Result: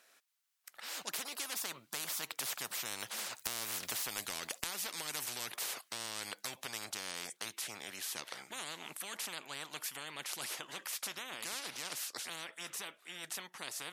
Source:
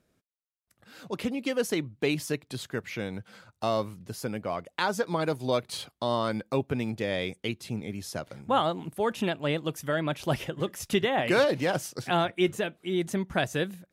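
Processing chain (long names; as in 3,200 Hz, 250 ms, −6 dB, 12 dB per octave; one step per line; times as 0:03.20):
source passing by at 0:03.88, 16 m/s, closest 4.2 metres
de-essing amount 70%
high-pass filter 1,100 Hz 12 dB per octave
downward compressor 3 to 1, threshold −46 dBFS, peak gain reduction 9 dB
every bin compressed towards the loudest bin 10 to 1
level +12.5 dB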